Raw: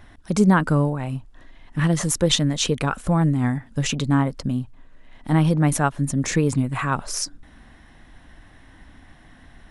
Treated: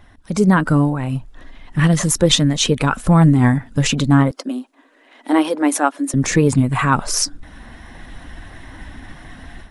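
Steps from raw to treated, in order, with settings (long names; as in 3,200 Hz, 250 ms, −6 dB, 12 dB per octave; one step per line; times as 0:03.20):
spectral magnitudes quantised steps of 15 dB
0:04.31–0:06.14: elliptic high-pass filter 270 Hz, stop band 50 dB
automatic gain control gain up to 12 dB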